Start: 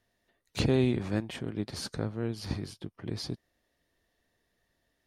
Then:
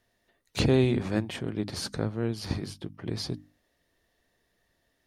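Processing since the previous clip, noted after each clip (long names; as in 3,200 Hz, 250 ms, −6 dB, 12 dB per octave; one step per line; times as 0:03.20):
mains-hum notches 50/100/150/200/250/300 Hz
level +3.5 dB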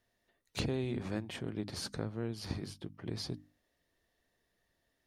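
downward compressor 5 to 1, threshold −25 dBFS, peak gain reduction 7.5 dB
level −6 dB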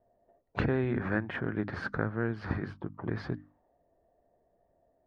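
envelope-controlled low-pass 660–1,600 Hz up, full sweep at −37 dBFS
level +5.5 dB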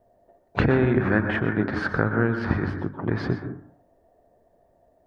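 dense smooth reverb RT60 0.56 s, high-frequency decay 0.3×, pre-delay 110 ms, DRR 6.5 dB
level +8.5 dB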